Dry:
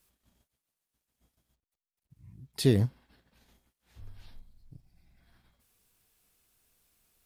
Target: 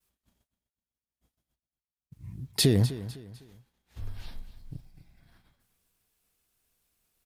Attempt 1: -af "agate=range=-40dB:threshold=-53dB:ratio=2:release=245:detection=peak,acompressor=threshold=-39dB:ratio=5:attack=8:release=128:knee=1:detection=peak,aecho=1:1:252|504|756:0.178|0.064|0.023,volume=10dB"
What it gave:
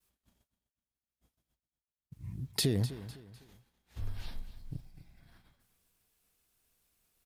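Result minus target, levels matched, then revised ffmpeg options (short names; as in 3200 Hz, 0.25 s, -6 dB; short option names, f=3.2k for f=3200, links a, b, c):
compressor: peak gain reduction +7.5 dB
-af "agate=range=-40dB:threshold=-53dB:ratio=2:release=245:detection=peak,acompressor=threshold=-29.5dB:ratio=5:attack=8:release=128:knee=1:detection=peak,aecho=1:1:252|504|756:0.178|0.064|0.023,volume=10dB"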